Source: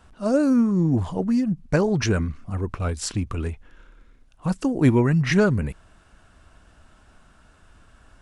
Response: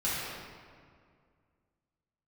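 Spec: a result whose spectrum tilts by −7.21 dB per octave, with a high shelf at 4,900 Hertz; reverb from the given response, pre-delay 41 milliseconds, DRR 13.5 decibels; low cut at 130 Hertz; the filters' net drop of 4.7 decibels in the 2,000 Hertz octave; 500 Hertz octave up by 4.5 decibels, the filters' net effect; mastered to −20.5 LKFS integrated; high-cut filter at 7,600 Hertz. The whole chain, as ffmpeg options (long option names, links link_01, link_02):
-filter_complex "[0:a]highpass=130,lowpass=7600,equalizer=frequency=500:width_type=o:gain=6,equalizer=frequency=2000:width_type=o:gain=-8,highshelf=frequency=4900:gain=6.5,asplit=2[link_01][link_02];[1:a]atrim=start_sample=2205,adelay=41[link_03];[link_02][link_03]afir=irnorm=-1:irlink=0,volume=-22.5dB[link_04];[link_01][link_04]amix=inputs=2:normalize=0,volume=1dB"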